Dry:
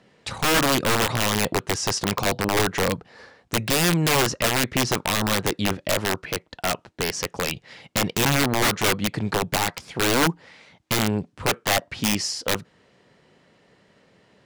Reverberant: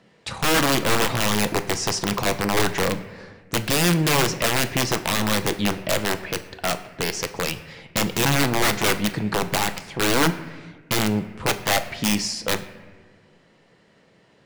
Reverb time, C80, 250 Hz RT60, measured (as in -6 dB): 1.4 s, 14.5 dB, 1.8 s